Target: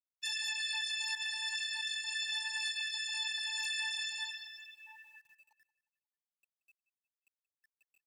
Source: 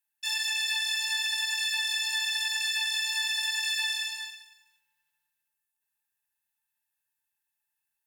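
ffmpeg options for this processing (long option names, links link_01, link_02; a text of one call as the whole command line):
ffmpeg -i in.wav -filter_complex "[0:a]aeval=exprs='val(0)+0.5*0.00891*sgn(val(0))':channel_layout=same,flanger=delay=17:depth=3.5:speed=0.4,asettb=1/sr,asplit=3[link_01][link_02][link_03];[link_01]atrim=end=1.154[link_04];[link_02]atrim=start=1.15:end=3.62,asetpts=PTS-STARTPTS,afade=type=in:duration=0.004:curve=qsin,afade=type=out:start_time=2.466:duration=0.004:curve=qsin,agate=range=-33dB:threshold=-28dB:ratio=3:detection=peak[link_05];[link_03]atrim=start=3.616[link_06];[link_04][link_05]acrossfade=duration=0.004:curve1=hsin:curve2=qsin[link_07];[link_07][link_06]acrossfade=duration=0.004:curve1=qsin:curve2=hsin,alimiter=level_in=4dB:limit=-24dB:level=0:latency=1:release=212,volume=-4dB,afftfilt=real='re*gte(hypot(re,im),0.0112)':imag='im*gte(hypot(re,im),0.0112)':win_size=1024:overlap=0.75,acrusher=bits=11:mix=0:aa=0.000001,aecho=1:1:179|358|537:0.112|0.0482|0.0207" out.wav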